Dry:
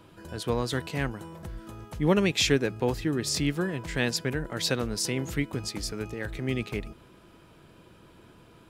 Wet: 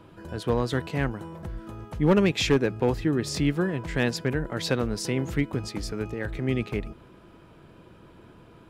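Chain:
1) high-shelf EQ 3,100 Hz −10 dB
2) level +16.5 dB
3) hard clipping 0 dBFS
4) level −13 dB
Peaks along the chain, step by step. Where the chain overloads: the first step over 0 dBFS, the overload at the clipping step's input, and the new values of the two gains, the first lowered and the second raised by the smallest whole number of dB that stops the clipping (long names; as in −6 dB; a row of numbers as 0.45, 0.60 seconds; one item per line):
−10.0, +6.5, 0.0, −13.0 dBFS
step 2, 6.5 dB
step 2 +9.5 dB, step 4 −6 dB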